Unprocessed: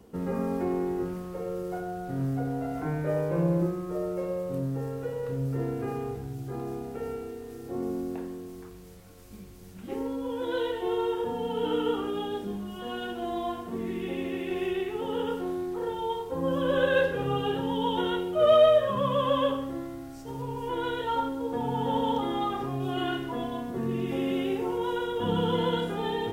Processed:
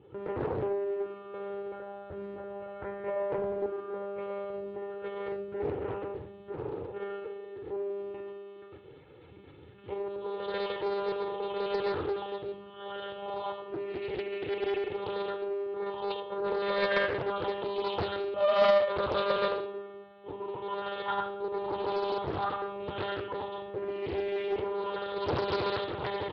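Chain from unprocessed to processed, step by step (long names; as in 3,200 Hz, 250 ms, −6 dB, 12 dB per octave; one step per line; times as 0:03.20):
one-pitch LPC vocoder at 8 kHz 200 Hz
high-pass filter 89 Hz 24 dB per octave
comb filter 2.3 ms, depth 76%
four-comb reverb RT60 0.42 s, combs from 25 ms, DRR 10.5 dB
highs frequency-modulated by the lows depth 0.88 ms
level −3 dB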